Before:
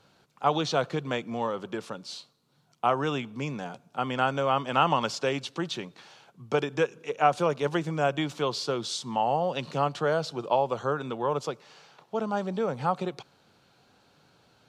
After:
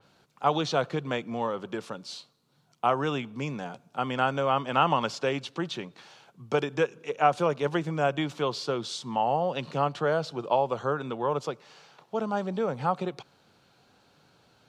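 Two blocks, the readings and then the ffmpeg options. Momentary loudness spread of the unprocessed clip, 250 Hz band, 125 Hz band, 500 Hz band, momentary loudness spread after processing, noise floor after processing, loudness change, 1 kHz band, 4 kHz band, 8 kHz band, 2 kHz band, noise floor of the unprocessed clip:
11 LU, 0.0 dB, 0.0 dB, 0.0 dB, 11 LU, -65 dBFS, 0.0 dB, 0.0 dB, -1.5 dB, -3.5 dB, 0.0 dB, -65 dBFS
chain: -af "adynamicequalizer=threshold=0.00447:dfrequency=4000:dqfactor=0.7:tfrequency=4000:tqfactor=0.7:attack=5:release=100:ratio=0.375:range=2.5:mode=cutabove:tftype=highshelf"

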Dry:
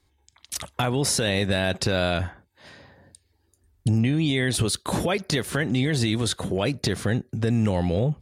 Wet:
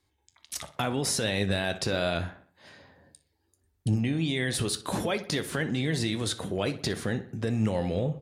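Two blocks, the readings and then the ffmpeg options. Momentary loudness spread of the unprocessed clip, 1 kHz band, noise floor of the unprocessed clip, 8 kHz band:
5 LU, -4.5 dB, -68 dBFS, -4.5 dB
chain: -filter_complex "[0:a]lowshelf=f=62:g=-10,flanger=delay=8.7:depth=5.2:regen=74:speed=0.78:shape=triangular,asplit=2[a][b];[b]adelay=61,lowpass=f=3.7k:p=1,volume=-14.5dB,asplit=2[c][d];[d]adelay=61,lowpass=f=3.7k:p=1,volume=0.52,asplit=2[e][f];[f]adelay=61,lowpass=f=3.7k:p=1,volume=0.52,asplit=2[g][h];[h]adelay=61,lowpass=f=3.7k:p=1,volume=0.52,asplit=2[i][j];[j]adelay=61,lowpass=f=3.7k:p=1,volume=0.52[k];[a][c][e][g][i][k]amix=inputs=6:normalize=0"

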